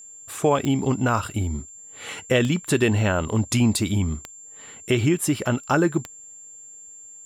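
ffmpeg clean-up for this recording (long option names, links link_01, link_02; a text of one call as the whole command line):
ffmpeg -i in.wav -af "adeclick=threshold=4,bandreject=frequency=7300:width=30" out.wav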